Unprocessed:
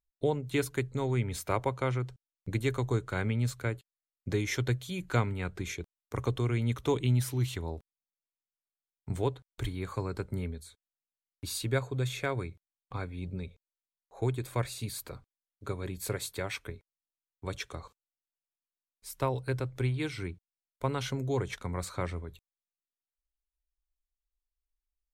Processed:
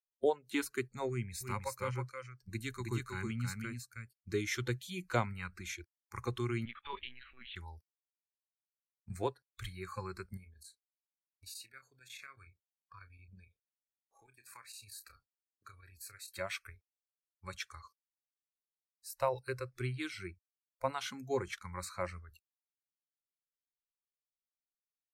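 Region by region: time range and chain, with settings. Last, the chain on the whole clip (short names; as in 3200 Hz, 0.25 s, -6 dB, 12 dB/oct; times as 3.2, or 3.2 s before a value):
1.09–4.34 bell 970 Hz -5.5 dB 3 oct + notch 660 Hz, Q 5.7 + echo 0.318 s -3.5 dB
6.65–7.56 HPF 630 Hz 6 dB/oct + LPC vocoder at 8 kHz pitch kept
10.37–16.31 compressor 2.5:1, threshold -44 dBFS + chopper 11 Hz, depth 60%, duty 85% + doubler 30 ms -11.5 dB
whole clip: low shelf 150 Hz -8.5 dB; spectral noise reduction 21 dB; dynamic EQ 540 Hz, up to +5 dB, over -47 dBFS, Q 0.82; gain -3 dB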